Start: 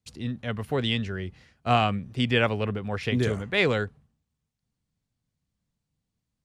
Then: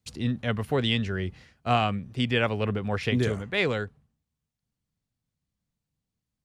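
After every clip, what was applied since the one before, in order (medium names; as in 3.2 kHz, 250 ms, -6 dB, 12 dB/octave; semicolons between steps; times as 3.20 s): gain riding within 4 dB 0.5 s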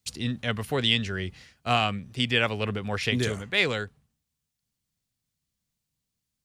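treble shelf 2.1 kHz +11 dB; trim -2.5 dB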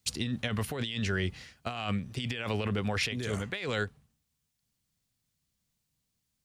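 compressor with a negative ratio -31 dBFS, ratio -1; trim -1.5 dB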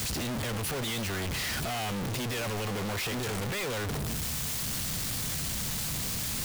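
one-bit comparator; trim +3 dB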